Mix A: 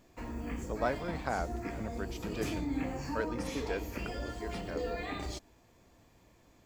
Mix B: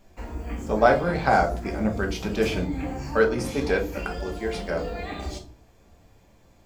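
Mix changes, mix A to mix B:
speech +10.0 dB; reverb: on, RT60 0.40 s

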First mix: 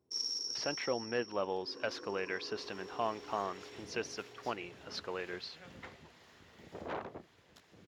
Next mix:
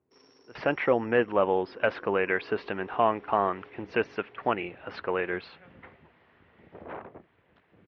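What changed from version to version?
speech +11.5 dB; master: add LPF 2600 Hz 24 dB/oct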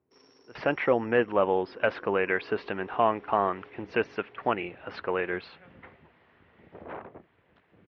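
none

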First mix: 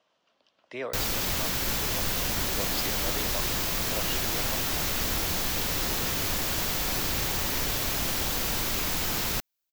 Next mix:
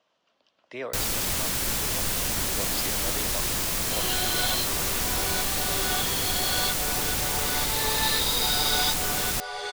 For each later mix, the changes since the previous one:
first sound: add bell 9300 Hz +9 dB 0.59 oct; second sound: unmuted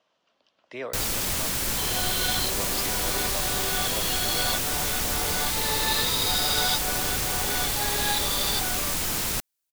second sound: entry -2.15 s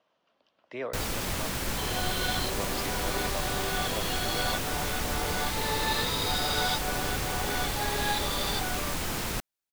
master: add high shelf 3700 Hz -10 dB

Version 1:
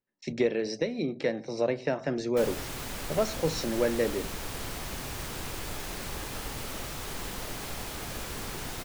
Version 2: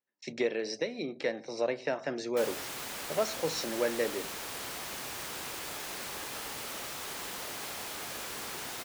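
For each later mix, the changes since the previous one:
master: add HPF 530 Hz 6 dB/oct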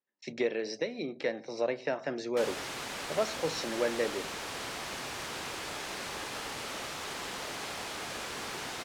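background +3.0 dB; master: add air absorption 51 m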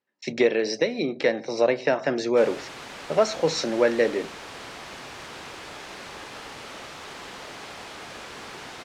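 speech +10.0 dB; background: add high shelf 8100 Hz -11 dB

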